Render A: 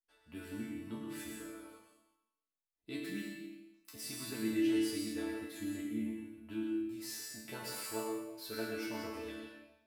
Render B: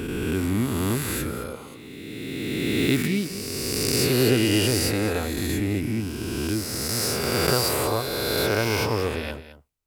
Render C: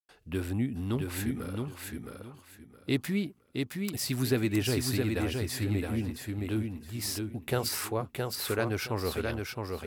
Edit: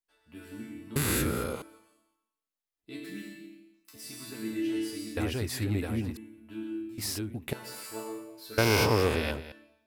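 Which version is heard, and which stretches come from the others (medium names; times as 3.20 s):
A
0.96–1.62 s: from B
5.17–6.17 s: from C
6.98–7.53 s: from C
8.58–9.52 s: from B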